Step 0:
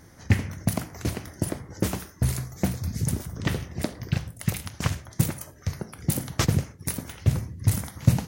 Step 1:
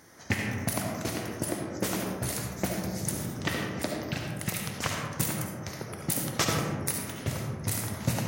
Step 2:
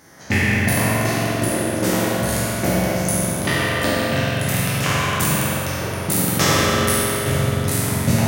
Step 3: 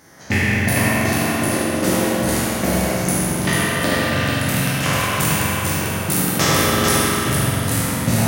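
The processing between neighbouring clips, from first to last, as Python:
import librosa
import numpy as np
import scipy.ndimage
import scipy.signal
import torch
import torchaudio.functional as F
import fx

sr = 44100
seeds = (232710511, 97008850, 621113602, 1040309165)

y1 = fx.highpass(x, sr, hz=410.0, slope=6)
y1 = fx.rev_freeverb(y1, sr, rt60_s=1.9, hf_ratio=0.3, predelay_ms=30, drr_db=0.0)
y2 = fx.spec_trails(y1, sr, decay_s=2.08)
y2 = fx.rev_spring(y2, sr, rt60_s=3.3, pass_ms=(44,), chirp_ms=25, drr_db=-2.0)
y2 = F.gain(torch.from_numpy(y2), 4.0).numpy()
y3 = y2 + 10.0 ** (-4.0 / 20.0) * np.pad(y2, (int(444 * sr / 1000.0), 0))[:len(y2)]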